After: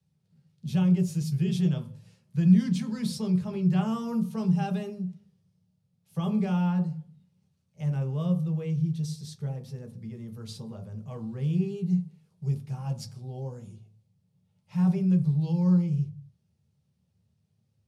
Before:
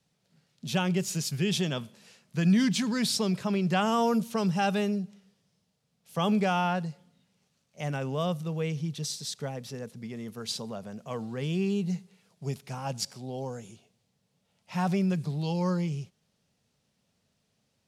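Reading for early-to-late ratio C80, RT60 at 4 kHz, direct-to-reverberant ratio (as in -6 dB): 18.0 dB, 0.35 s, 2.0 dB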